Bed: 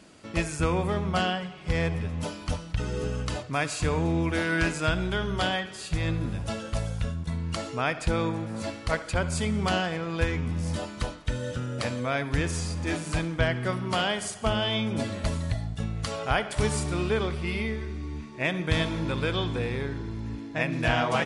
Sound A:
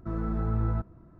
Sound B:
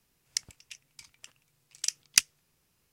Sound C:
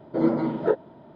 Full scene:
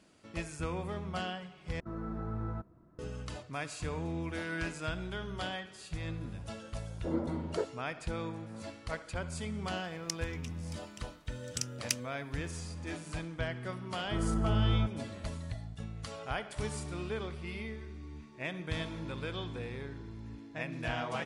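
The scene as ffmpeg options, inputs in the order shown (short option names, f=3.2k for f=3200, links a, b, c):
-filter_complex "[1:a]asplit=2[a][b];[0:a]volume=-11dB[c];[a]lowshelf=f=99:g=-9.5[d];[2:a]alimiter=level_in=8dB:limit=-1dB:release=50:level=0:latency=1[e];[b]highpass=42[f];[c]asplit=2[g][h];[g]atrim=end=1.804[i];[d]atrim=end=1.19,asetpts=PTS-STARTPTS,volume=-5.5dB[j];[h]atrim=start=2.986[k];[3:a]atrim=end=1.15,asetpts=PTS-STARTPTS,volume=-12dB,afade=t=in:d=0.004:c=hsin,afade=t=out:st=1.146:d=0.004:c=hsin,adelay=304290S[l];[e]atrim=end=2.92,asetpts=PTS-STARTPTS,volume=-12dB,afade=t=in:d=0.004:c=hsin,afade=t=out:st=2.916:d=0.004:c=hsin,adelay=9730[m];[f]atrim=end=1.19,asetpts=PTS-STARTPTS,volume=-0.5dB,afade=t=in:d=0.004:c=hsin,afade=t=out:st=1.186:d=0.004:c=hsin,adelay=14050[n];[i][j]acrossfade=d=0.004:c1=hsin:c2=hsin[o];[o][k]acrossfade=d=0.004:c1=hsin:c2=hsin[p];[p][l][m][n]amix=inputs=4:normalize=0"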